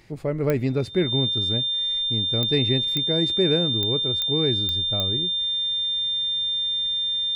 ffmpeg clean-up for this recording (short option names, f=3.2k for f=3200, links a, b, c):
-af "adeclick=t=4,bandreject=f=3.6k:w=30"